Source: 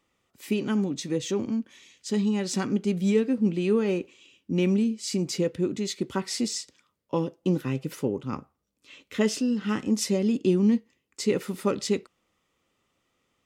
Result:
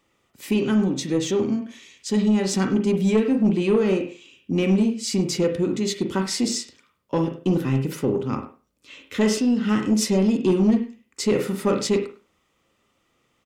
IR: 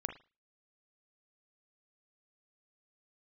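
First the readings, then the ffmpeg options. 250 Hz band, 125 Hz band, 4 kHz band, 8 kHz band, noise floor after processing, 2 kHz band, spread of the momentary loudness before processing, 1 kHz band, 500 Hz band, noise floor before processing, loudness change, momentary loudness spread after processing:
+5.0 dB, +5.0 dB, +4.5 dB, +4.5 dB, −69 dBFS, +4.5 dB, 8 LU, +5.5 dB, +4.5 dB, −77 dBFS, +4.5 dB, 9 LU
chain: -filter_complex "[0:a]asplit=2[link_01][link_02];[link_02]adelay=100,highpass=300,lowpass=3400,asoftclip=type=hard:threshold=-21.5dB,volume=-14dB[link_03];[link_01][link_03]amix=inputs=2:normalize=0[link_04];[1:a]atrim=start_sample=2205[link_05];[link_04][link_05]afir=irnorm=-1:irlink=0,asoftclip=type=tanh:threshold=-17.5dB,volume=6dB"

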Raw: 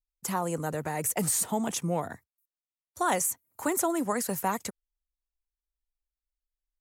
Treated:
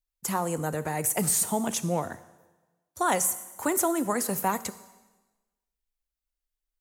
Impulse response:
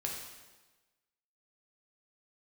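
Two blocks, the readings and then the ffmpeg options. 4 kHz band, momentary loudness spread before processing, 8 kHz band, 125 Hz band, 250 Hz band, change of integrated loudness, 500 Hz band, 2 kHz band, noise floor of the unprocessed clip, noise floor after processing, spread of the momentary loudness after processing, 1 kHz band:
+2.0 dB, 7 LU, +3.0 dB, +2.0 dB, +1.5 dB, +2.5 dB, +1.5 dB, +2.0 dB, below −85 dBFS, below −85 dBFS, 8 LU, +2.0 dB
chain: -filter_complex "[0:a]asplit=2[link_01][link_02];[1:a]atrim=start_sample=2205,highshelf=frequency=7500:gain=9.5[link_03];[link_02][link_03]afir=irnorm=-1:irlink=0,volume=-12.5dB[link_04];[link_01][link_04]amix=inputs=2:normalize=0"

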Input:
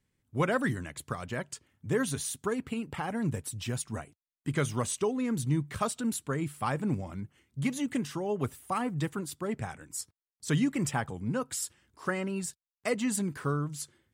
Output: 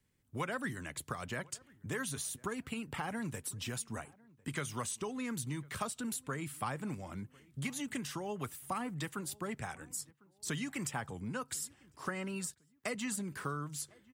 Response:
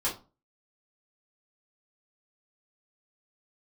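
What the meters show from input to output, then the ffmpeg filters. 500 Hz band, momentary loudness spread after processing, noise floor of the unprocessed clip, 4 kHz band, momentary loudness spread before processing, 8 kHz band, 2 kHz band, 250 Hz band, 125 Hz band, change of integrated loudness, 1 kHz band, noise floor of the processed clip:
−9.5 dB, 6 LU, below −85 dBFS, −3.0 dB, 10 LU, −3.5 dB, −4.0 dB, −9.0 dB, −9.5 dB, −7.0 dB, −5.5 dB, −71 dBFS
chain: -filter_complex "[0:a]highshelf=frequency=11000:gain=5,acrossover=split=180|900[link_01][link_02][link_03];[link_01]acompressor=threshold=-46dB:ratio=4[link_04];[link_02]acompressor=threshold=-43dB:ratio=4[link_05];[link_03]acompressor=threshold=-38dB:ratio=4[link_06];[link_04][link_05][link_06]amix=inputs=3:normalize=0,asplit=2[link_07][link_08];[link_08]adelay=1051,lowpass=frequency=1400:poles=1,volume=-24dB,asplit=2[link_09][link_10];[link_10]adelay=1051,lowpass=frequency=1400:poles=1,volume=0.38[link_11];[link_07][link_09][link_11]amix=inputs=3:normalize=0"

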